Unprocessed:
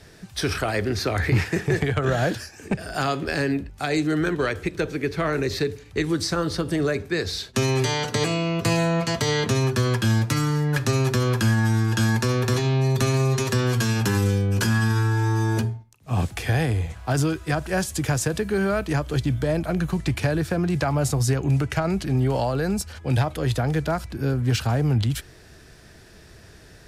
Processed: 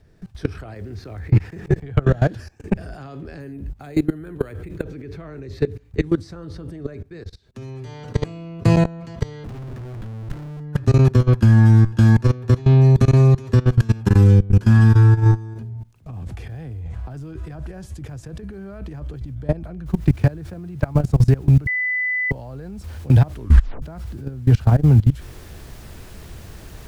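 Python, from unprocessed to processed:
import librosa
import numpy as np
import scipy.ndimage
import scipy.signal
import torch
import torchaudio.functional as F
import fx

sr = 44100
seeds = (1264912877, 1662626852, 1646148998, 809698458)

y = fx.level_steps(x, sr, step_db=20, at=(0.73, 1.82), fade=0.02)
y = fx.resample_bad(y, sr, factor=4, down='filtered', up='hold', at=(3.4, 4.83))
y = fx.schmitt(y, sr, flips_db=-28.5, at=(9.44, 10.6))
y = fx.over_compress(y, sr, threshold_db=-29.0, ratio=-0.5, at=(15.53, 19.36), fade=0.02)
y = fx.noise_floor_step(y, sr, seeds[0], at_s=19.86, before_db=-60, after_db=-41, tilt_db=0.0)
y = fx.edit(y, sr, fx.fade_down_up(start_s=6.92, length_s=1.14, db=-12.5, fade_s=0.17),
    fx.bleep(start_s=21.67, length_s=0.64, hz=2000.0, db=-8.5),
    fx.tape_stop(start_s=23.31, length_s=0.51), tone=tone)
y = fx.level_steps(y, sr, step_db=21)
y = fx.tilt_eq(y, sr, slope=-3.0)
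y = F.gain(torch.from_numpy(y), 2.0).numpy()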